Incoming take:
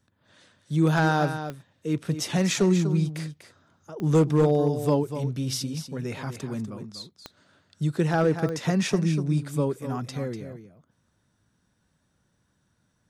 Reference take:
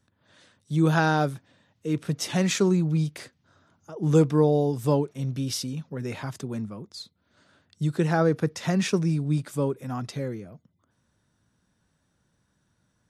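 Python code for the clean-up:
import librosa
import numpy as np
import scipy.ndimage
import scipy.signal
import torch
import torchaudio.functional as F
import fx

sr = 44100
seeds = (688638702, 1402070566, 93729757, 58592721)

y = fx.fix_declip(x, sr, threshold_db=-13.5)
y = fx.fix_declick_ar(y, sr, threshold=10.0)
y = fx.fix_echo_inverse(y, sr, delay_ms=245, level_db=-10.0)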